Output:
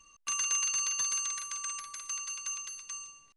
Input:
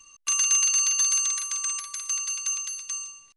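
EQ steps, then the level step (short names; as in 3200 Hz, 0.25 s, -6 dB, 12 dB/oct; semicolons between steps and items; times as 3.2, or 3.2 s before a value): high shelf 2500 Hz -10.5 dB; 0.0 dB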